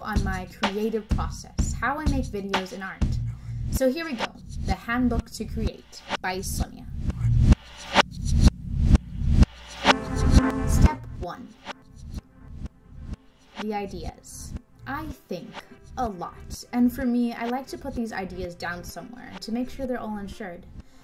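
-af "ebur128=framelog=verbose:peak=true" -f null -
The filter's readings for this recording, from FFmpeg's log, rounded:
Integrated loudness:
  I:         -26.6 LUFS
  Threshold: -37.5 LUFS
Loudness range:
  LRA:        13.4 LU
  Threshold: -47.2 LUFS
  LRA low:   -36.2 LUFS
  LRA high:  -22.8 LUFS
True peak:
  Peak:       -3.6 dBFS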